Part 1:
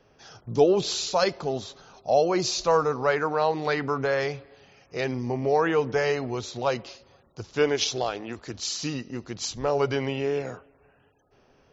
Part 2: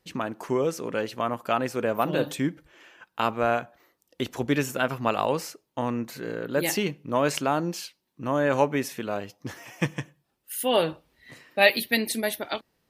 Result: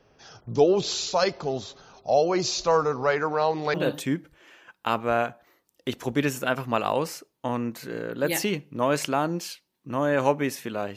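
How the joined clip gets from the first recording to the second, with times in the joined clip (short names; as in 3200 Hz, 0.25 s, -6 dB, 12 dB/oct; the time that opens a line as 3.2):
part 1
3.74 switch to part 2 from 2.07 s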